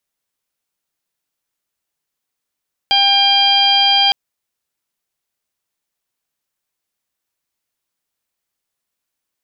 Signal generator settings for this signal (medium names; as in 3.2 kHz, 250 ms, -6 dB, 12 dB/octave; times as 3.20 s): steady additive tone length 1.21 s, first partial 798 Hz, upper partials -12/-6/4/-12/-1.5 dB, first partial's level -16 dB